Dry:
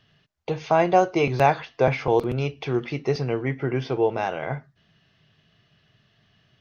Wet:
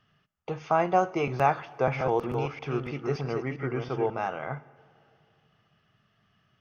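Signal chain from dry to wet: 1.62–4.1 reverse delay 0.324 s, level -5 dB; thirty-one-band EQ 200 Hz +4 dB, 800 Hz +3 dB, 1250 Hz +11 dB, 4000 Hz -9 dB; plate-style reverb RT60 2.7 s, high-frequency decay 0.85×, DRR 20 dB; gain -7 dB

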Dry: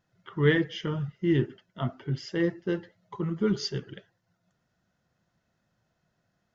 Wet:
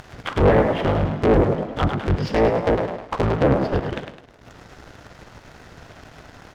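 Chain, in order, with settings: cycle switcher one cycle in 3, inverted; upward compressor, threshold -31 dBFS; bell 200 Hz -6 dB 0.89 oct; treble ducked by the level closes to 1000 Hz, closed at -25 dBFS; frequency-shifting echo 0.104 s, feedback 46%, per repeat +59 Hz, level -7 dB; Schroeder reverb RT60 3 s, combs from 33 ms, DRR 18.5 dB; sample leveller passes 2; high shelf 5700 Hz -8.5 dB; gain +4.5 dB

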